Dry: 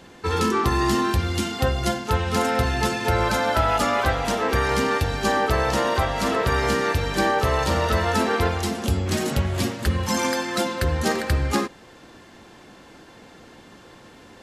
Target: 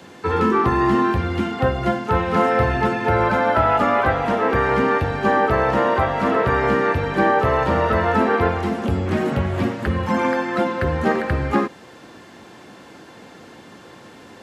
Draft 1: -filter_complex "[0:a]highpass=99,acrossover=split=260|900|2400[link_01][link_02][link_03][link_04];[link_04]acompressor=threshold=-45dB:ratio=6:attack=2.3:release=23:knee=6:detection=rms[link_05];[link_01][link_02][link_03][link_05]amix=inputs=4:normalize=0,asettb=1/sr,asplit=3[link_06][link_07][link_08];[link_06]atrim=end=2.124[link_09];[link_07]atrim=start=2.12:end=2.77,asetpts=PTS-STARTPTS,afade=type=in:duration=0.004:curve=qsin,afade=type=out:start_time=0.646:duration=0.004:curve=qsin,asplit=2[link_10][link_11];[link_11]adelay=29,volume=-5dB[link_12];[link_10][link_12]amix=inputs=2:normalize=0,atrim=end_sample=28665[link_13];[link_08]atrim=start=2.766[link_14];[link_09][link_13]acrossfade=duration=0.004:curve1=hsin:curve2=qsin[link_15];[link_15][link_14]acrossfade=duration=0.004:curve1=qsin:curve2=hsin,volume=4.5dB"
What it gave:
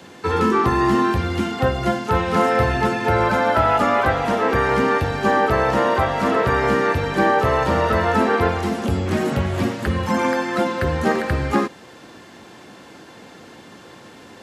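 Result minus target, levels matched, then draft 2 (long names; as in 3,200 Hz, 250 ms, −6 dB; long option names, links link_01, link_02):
downward compressor: peak gain reduction −8.5 dB
-filter_complex "[0:a]highpass=99,acrossover=split=260|900|2400[link_01][link_02][link_03][link_04];[link_04]acompressor=threshold=-55dB:ratio=6:attack=2.3:release=23:knee=6:detection=rms[link_05];[link_01][link_02][link_03][link_05]amix=inputs=4:normalize=0,asettb=1/sr,asplit=3[link_06][link_07][link_08];[link_06]atrim=end=2.124[link_09];[link_07]atrim=start=2.12:end=2.77,asetpts=PTS-STARTPTS,afade=type=in:duration=0.004:curve=qsin,afade=type=out:start_time=0.646:duration=0.004:curve=qsin,asplit=2[link_10][link_11];[link_11]adelay=29,volume=-5dB[link_12];[link_10][link_12]amix=inputs=2:normalize=0,atrim=end_sample=28665[link_13];[link_08]atrim=start=2.766[link_14];[link_09][link_13]acrossfade=duration=0.004:curve1=hsin:curve2=qsin[link_15];[link_15][link_14]acrossfade=duration=0.004:curve1=qsin:curve2=hsin,volume=4.5dB"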